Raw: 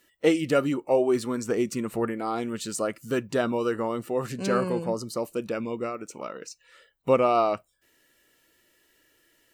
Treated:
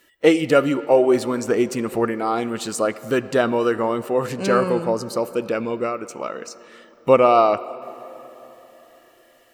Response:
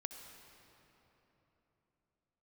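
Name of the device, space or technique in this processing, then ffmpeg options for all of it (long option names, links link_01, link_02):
filtered reverb send: -filter_complex "[0:a]asplit=2[link_01][link_02];[link_02]highpass=270,lowpass=4500[link_03];[1:a]atrim=start_sample=2205[link_04];[link_03][link_04]afir=irnorm=-1:irlink=0,volume=-4dB[link_05];[link_01][link_05]amix=inputs=2:normalize=0,volume=4.5dB"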